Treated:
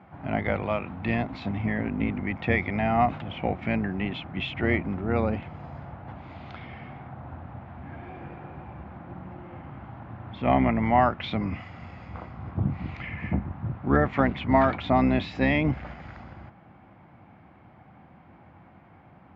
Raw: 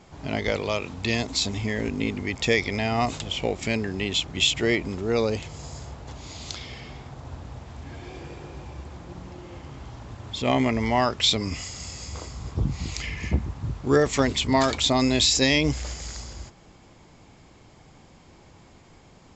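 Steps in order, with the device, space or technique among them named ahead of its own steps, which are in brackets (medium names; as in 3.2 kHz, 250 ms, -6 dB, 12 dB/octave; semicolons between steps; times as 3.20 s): sub-octave bass pedal (octave divider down 2 oct, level 0 dB; cabinet simulation 79–2300 Hz, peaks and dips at 200 Hz +4 dB, 430 Hz -8 dB, 750 Hz +6 dB, 1.4 kHz +4 dB); trim -1 dB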